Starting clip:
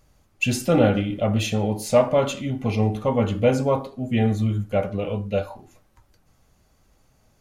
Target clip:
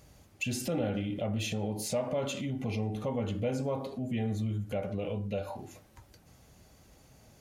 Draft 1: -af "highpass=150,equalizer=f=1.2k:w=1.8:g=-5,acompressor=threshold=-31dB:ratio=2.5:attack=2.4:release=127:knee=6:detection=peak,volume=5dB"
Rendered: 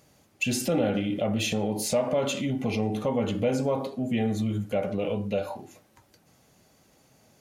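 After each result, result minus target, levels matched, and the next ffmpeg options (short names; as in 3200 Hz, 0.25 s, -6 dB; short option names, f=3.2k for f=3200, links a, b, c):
compressor: peak gain reduction -6.5 dB; 125 Hz band -4.0 dB
-af "highpass=150,equalizer=f=1.2k:w=1.8:g=-5,acompressor=threshold=-42dB:ratio=2.5:attack=2.4:release=127:knee=6:detection=peak,volume=5dB"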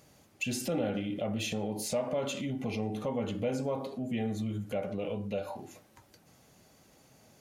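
125 Hz band -4.0 dB
-af "highpass=57,equalizer=f=1.2k:w=1.8:g=-5,acompressor=threshold=-42dB:ratio=2.5:attack=2.4:release=127:knee=6:detection=peak,volume=5dB"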